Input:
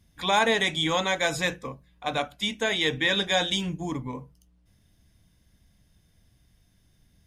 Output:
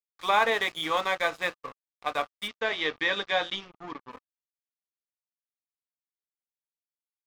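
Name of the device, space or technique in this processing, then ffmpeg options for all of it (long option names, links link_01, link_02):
pocket radio on a weak battery: -filter_complex "[0:a]highpass=380,lowpass=3100,aeval=exprs='sgn(val(0))*max(abs(val(0))-0.0112,0)':channel_layout=same,equalizer=frequency=1200:width_type=o:width=0.2:gain=10,asplit=3[link_01][link_02][link_03];[link_01]afade=type=out:start_time=2.47:duration=0.02[link_04];[link_02]lowpass=frequency=5700:width=0.5412,lowpass=frequency=5700:width=1.3066,afade=type=in:start_time=2.47:duration=0.02,afade=type=out:start_time=4.1:duration=0.02[link_05];[link_03]afade=type=in:start_time=4.1:duration=0.02[link_06];[link_04][link_05][link_06]amix=inputs=3:normalize=0"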